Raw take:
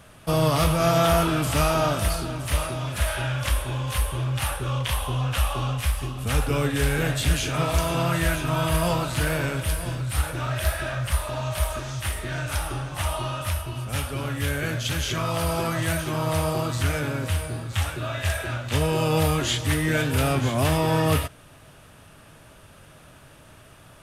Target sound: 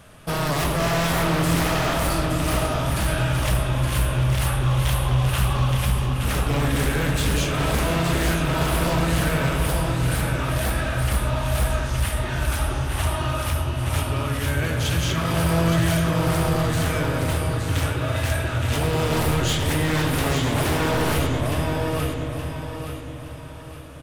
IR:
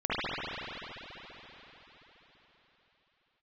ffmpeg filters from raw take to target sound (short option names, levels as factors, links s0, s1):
-filter_complex "[0:a]aecho=1:1:870|1740|2610|3480:0.501|0.185|0.0686|0.0254,aeval=exprs='0.106*(abs(mod(val(0)/0.106+3,4)-2)-1)':c=same,asplit=2[s0][s1];[1:a]atrim=start_sample=2205,lowshelf=f=470:g=7[s2];[s1][s2]afir=irnorm=-1:irlink=0,volume=0.112[s3];[s0][s3]amix=inputs=2:normalize=0"